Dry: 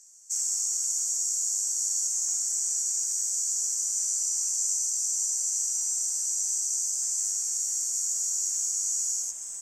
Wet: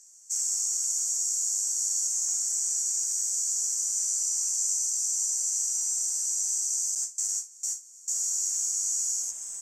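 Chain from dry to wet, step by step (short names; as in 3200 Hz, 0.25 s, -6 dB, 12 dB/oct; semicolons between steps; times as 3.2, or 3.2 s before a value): 6.95–8.08 gate with hold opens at -18 dBFS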